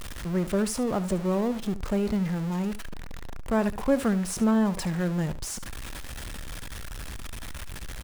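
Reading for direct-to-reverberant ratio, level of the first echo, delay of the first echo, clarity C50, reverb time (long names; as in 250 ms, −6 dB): no reverb audible, −15.5 dB, 72 ms, no reverb audible, no reverb audible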